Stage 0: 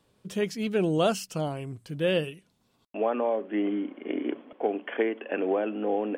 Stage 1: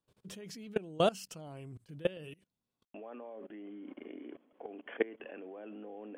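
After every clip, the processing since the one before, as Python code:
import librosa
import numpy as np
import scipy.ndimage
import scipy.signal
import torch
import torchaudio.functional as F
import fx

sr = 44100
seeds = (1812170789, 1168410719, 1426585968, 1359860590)

y = fx.low_shelf(x, sr, hz=260.0, db=2.0)
y = fx.level_steps(y, sr, step_db=22)
y = y * librosa.db_to_amplitude(-2.5)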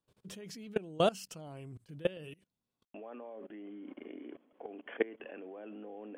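y = x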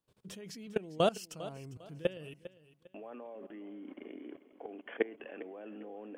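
y = fx.echo_feedback(x, sr, ms=401, feedback_pct=29, wet_db=-16)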